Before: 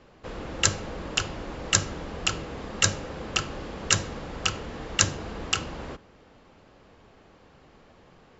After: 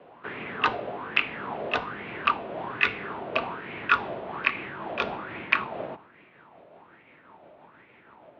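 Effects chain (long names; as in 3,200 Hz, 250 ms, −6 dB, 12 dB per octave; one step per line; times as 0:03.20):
pitch glide at a constant tempo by −2.5 semitones starting unshifted
single-sideband voice off tune −83 Hz 220–3,500 Hz
auto-filter bell 1.2 Hz 590–2,300 Hz +16 dB
level −1 dB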